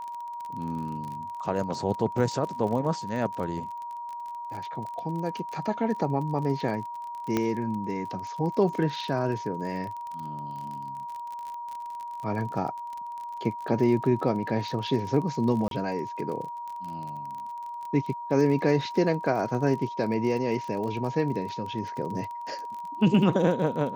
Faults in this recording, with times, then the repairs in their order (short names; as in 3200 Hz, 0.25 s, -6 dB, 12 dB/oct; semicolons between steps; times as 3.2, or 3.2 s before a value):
crackle 33/s -34 dBFS
tone 950 Hz -34 dBFS
7.37 pop -12 dBFS
15.68–15.71 gap 32 ms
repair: de-click; notch 950 Hz, Q 30; interpolate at 15.68, 32 ms